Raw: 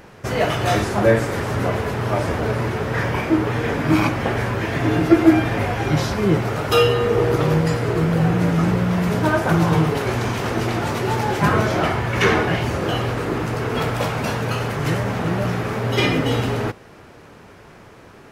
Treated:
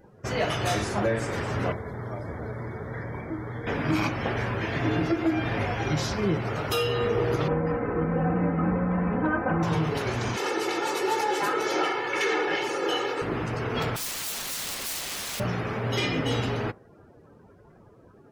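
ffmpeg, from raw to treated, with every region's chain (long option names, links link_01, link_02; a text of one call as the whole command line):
ffmpeg -i in.wav -filter_complex "[0:a]asettb=1/sr,asplit=3[link_01][link_02][link_03];[link_01]atrim=end=1.724[link_04];[link_02]atrim=start=1.72:end=3.67,asetpts=PTS-STARTPTS,afade=type=in:duration=0.004:curve=qsin,afade=type=out:start_time=1.946:duration=0.004:curve=qsin,acrossover=split=200|620|2400[link_05][link_06][link_07][link_08];[link_05]acompressor=threshold=-30dB:ratio=3[link_09];[link_06]acompressor=threshold=-34dB:ratio=3[link_10];[link_07]acompressor=threshold=-39dB:ratio=3[link_11];[link_08]acompressor=threshold=-47dB:ratio=3[link_12];[link_09][link_10][link_11][link_12]amix=inputs=4:normalize=0,asuperstop=centerf=2700:order=12:qfactor=3.3[link_13];[link_03]atrim=start=3.666[link_14];[link_04][link_13]acrossfade=duration=0.004:curve1=hsin:curve2=qsin[link_15];[link_15][link_14]acrossfade=duration=0.004:curve1=qsin:curve2=hsin,asettb=1/sr,asplit=3[link_16][link_17][link_18];[link_16]atrim=end=7.484[link_19];[link_17]atrim=start=7.48:end=9.63,asetpts=PTS-STARTPTS,afade=type=in:duration=0.004:curve=qsin,afade=type=out:start_time=2.146:duration=0.004:curve=qsin,lowpass=1500,aecho=1:1:3.9:0.79,atrim=end_sample=94815[link_20];[link_18]atrim=start=9.626[link_21];[link_19][link_20]acrossfade=duration=0.004:curve1=hsin:curve2=qsin[link_22];[link_22][link_21]acrossfade=duration=0.004:curve1=qsin:curve2=hsin,asettb=1/sr,asplit=3[link_23][link_24][link_25];[link_23]atrim=end=10.364[link_26];[link_24]atrim=start=10.36:end=13.22,asetpts=PTS-STARTPTS,afade=type=in:duration=0.004:curve=qsin,afade=type=out:start_time=2.856:duration=0.004:curve=qsin,highpass=frequency=240:width=0.5412,highpass=frequency=240:width=1.3066,aecho=1:1:2.3:0.78,atrim=end_sample=126126[link_27];[link_25]atrim=start=13.216[link_28];[link_26][link_27]acrossfade=duration=0.004:curve1=hsin:curve2=qsin[link_29];[link_29][link_28]acrossfade=duration=0.004:curve1=qsin:curve2=hsin,asettb=1/sr,asplit=3[link_30][link_31][link_32];[link_30]atrim=end=13.964[link_33];[link_31]atrim=start=13.96:end=15.4,asetpts=PTS-STARTPTS,afade=type=in:duration=0.004:curve=qsin,afade=type=out:start_time=1.436:duration=0.004:curve=qsin,lowshelf=frequency=64:gain=3,aeval=exprs='(mod(18.8*val(0)+1,2)-1)/18.8':channel_layout=same[link_34];[link_32]atrim=start=15.396[link_35];[link_33][link_34]acrossfade=duration=0.004:curve1=hsin:curve2=qsin[link_36];[link_36][link_35]acrossfade=duration=0.004:curve1=qsin:curve2=hsin,afftdn=noise_reduction=22:noise_floor=-41,highshelf=frequency=4200:gain=9.5,alimiter=limit=-9dB:level=0:latency=1:release=203,volume=-6.5dB" out.wav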